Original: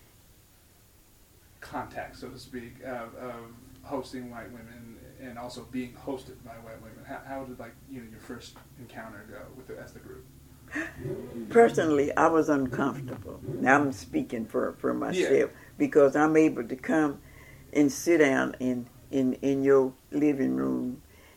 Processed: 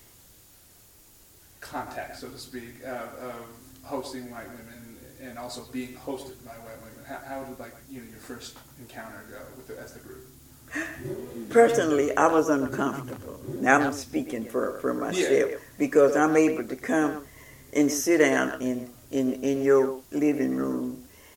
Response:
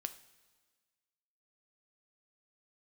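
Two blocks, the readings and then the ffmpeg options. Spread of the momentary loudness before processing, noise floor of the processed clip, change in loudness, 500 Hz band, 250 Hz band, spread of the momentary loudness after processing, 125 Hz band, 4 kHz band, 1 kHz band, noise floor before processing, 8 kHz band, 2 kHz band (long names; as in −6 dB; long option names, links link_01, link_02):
22 LU, −54 dBFS, +1.5 dB, +1.5 dB, +0.5 dB, 22 LU, −1.0 dB, +4.5 dB, +2.0 dB, −57 dBFS, +7.0 dB, +2.0 dB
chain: -filter_complex "[0:a]bass=frequency=250:gain=-3,treble=frequency=4000:gain=6,asplit=2[link_01][link_02];[link_02]adelay=120,highpass=300,lowpass=3400,asoftclip=type=hard:threshold=-13.5dB,volume=-10dB[link_03];[link_01][link_03]amix=inputs=2:normalize=0,volume=1.5dB"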